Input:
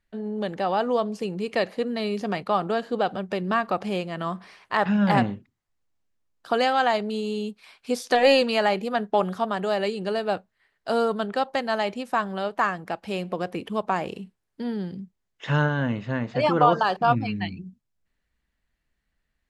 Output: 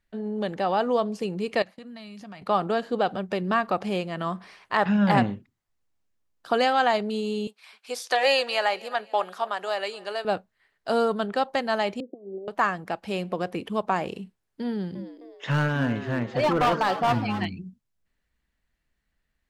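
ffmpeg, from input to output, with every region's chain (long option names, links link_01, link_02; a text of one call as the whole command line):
ffmpeg -i in.wav -filter_complex "[0:a]asettb=1/sr,asplit=3[link_01][link_02][link_03];[link_01]atrim=end=1.624[link_04];[link_02]atrim=start=1.62:end=2.42,asetpts=PTS-STARTPTS,afade=type=in:duration=0.004:curve=qsin,afade=type=out:start_time=0.796:duration=0.004:curve=qsin,agate=range=-33dB:threshold=-37dB:ratio=3:release=100:detection=peak,equalizer=frequency=420:width=2.5:gain=-14,acompressor=threshold=-41dB:ratio=4:attack=3.2:release=140:knee=1:detection=peak[link_05];[link_03]atrim=start=2.416[link_06];[link_04][link_05]acrossfade=duration=0.004:curve1=hsin:curve2=qsin[link_07];[link_07][link_06]acrossfade=duration=0.004:curve1=qsin:curve2=hsin,asettb=1/sr,asplit=3[link_08][link_09][link_10];[link_08]atrim=end=7.474[link_11];[link_09]atrim=start=7.47:end=10.25,asetpts=PTS-STARTPTS,afade=type=in:duration=0.004:curve=qsin,afade=type=out:start_time=2.776:duration=0.004:curve=qsin,highpass=660,aecho=1:1:260|520|780:0.0794|0.0318|0.0127,atrim=end_sample=122598[link_12];[link_10]atrim=start=10.246[link_13];[link_11][link_12]acrossfade=duration=0.004:curve1=hsin:curve2=qsin[link_14];[link_14][link_13]acrossfade=duration=0.004:curve1=qsin:curve2=hsin,asettb=1/sr,asplit=3[link_15][link_16][link_17];[link_15]atrim=end=12.004[link_18];[link_16]atrim=start=12:end=12.48,asetpts=PTS-STARTPTS,afade=type=in:duration=0.004:curve=qsin,afade=type=out:start_time=0.476:duration=0.004:curve=qsin,aecho=1:1:2.6:0.67,atrim=end_sample=21168,acompressor=threshold=-28dB:ratio=12:attack=3.2:release=140:knee=1:detection=peak,asuperpass=centerf=330:order=12:qfactor=0.89[link_19];[link_17]atrim=start=12.476[link_20];[link_18][link_19]acrossfade=duration=0.004:curve1=hsin:curve2=qsin[link_21];[link_21][link_20]acrossfade=duration=0.004:curve1=qsin:curve2=hsin,asettb=1/sr,asplit=3[link_22][link_23][link_24];[link_22]atrim=end=14.694[link_25];[link_23]atrim=start=14.69:end=17.46,asetpts=PTS-STARTPTS,afade=type=in:duration=0.004:curve=qsin,afade=type=out:start_time=2.766:duration=0.004:curve=qsin,asoftclip=type=hard:threshold=-18dB,asplit=5[link_26][link_27][link_28][link_29][link_30];[link_27]adelay=260,afreqshift=120,volume=-12dB[link_31];[link_28]adelay=520,afreqshift=240,volume=-19.7dB[link_32];[link_29]adelay=780,afreqshift=360,volume=-27.5dB[link_33];[link_30]adelay=1040,afreqshift=480,volume=-35.2dB[link_34];[link_26][link_31][link_32][link_33][link_34]amix=inputs=5:normalize=0,atrim=end_sample=122157[link_35];[link_24]atrim=start=17.456[link_36];[link_25][link_35]acrossfade=duration=0.004:curve1=hsin:curve2=qsin[link_37];[link_37][link_36]acrossfade=duration=0.004:curve1=qsin:curve2=hsin" out.wav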